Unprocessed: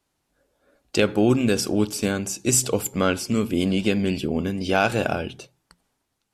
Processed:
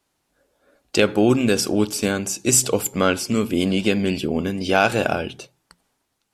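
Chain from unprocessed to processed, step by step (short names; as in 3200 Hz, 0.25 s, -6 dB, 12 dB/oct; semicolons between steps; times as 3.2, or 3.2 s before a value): low shelf 190 Hz -5 dB; gain +3.5 dB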